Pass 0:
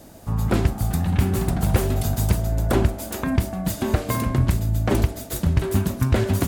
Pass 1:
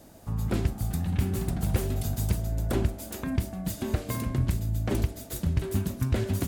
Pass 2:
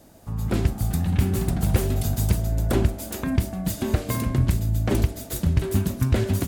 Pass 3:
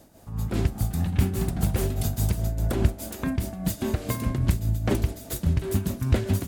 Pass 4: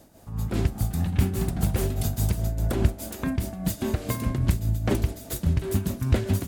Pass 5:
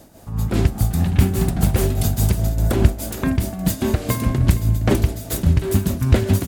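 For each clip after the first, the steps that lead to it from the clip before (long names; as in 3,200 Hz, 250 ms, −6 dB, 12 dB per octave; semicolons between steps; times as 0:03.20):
dynamic equaliser 990 Hz, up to −5 dB, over −39 dBFS, Q 0.72; level −6.5 dB
automatic gain control gain up to 5.5 dB
amplitude tremolo 4.9 Hz, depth 55%
no processing that can be heard
single-tap delay 466 ms −16 dB; level +7 dB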